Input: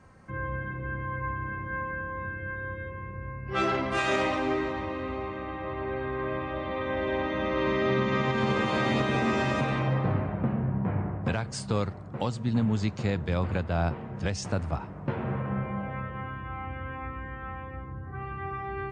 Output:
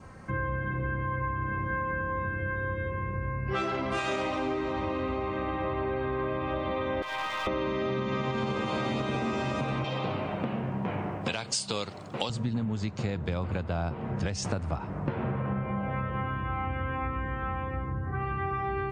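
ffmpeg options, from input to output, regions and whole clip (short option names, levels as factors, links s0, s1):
-filter_complex "[0:a]asettb=1/sr,asplit=3[s0][s1][s2];[s0]atrim=end=7.024[s3];[s1]atrim=start=7.02:end=7.47,asetpts=PTS-STARTPTS,afade=t=in:d=0.004:c=qsin,afade=t=out:st=0.446:d=0.004:c=qsin,highpass=f=870:w=0.5412,highpass=f=870:w=1.3066,aeval=exprs='clip(val(0),-1,0.015)':c=same[s4];[s2]atrim=start=7.466[s5];[s3][s4]acrossfade=d=0.004:c1=hsin:c2=qsin[s6];[s6][s5]acrossfade=d=0.004:c1=qsin:c2=hsin,asettb=1/sr,asplit=3[s7][s8][s9];[s7]atrim=end=9.844[s10];[s8]atrim=start=9.84:end=12.3,asetpts=PTS-STARTPTS,afade=t=in:d=0.004:c=qsin,afade=t=out:st=2.456:d=0.004:c=qsin,highpass=f=430:p=1,highshelf=f=2300:t=q:w=1.5:g=8[s11];[s9]atrim=start=12.296[s12];[s10][s11]acrossfade=d=0.004:c1=hsin:c2=qsin[s13];[s13][s12]acrossfade=d=0.004:c1=qsin:c2=hsin,acontrast=83,adynamicequalizer=threshold=0.00631:dfrequency=1800:dqfactor=4.3:tfrequency=1800:tqfactor=4.3:attack=5:release=100:ratio=0.375:range=3.5:mode=cutabove:tftype=bell,acompressor=threshold=0.0447:ratio=10"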